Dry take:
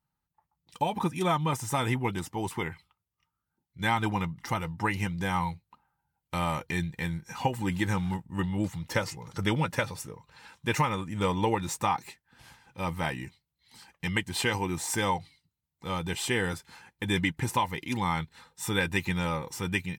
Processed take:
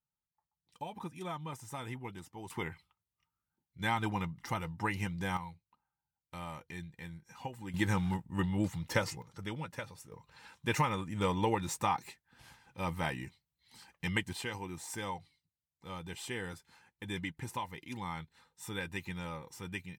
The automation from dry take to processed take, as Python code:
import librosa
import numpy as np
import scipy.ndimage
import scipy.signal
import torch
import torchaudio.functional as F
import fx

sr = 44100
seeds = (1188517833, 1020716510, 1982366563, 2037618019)

y = fx.gain(x, sr, db=fx.steps((0.0, -14.0), (2.5, -5.5), (5.37, -14.0), (7.74, -2.5), (9.22, -13.0), (10.12, -4.0), (14.33, -11.5)))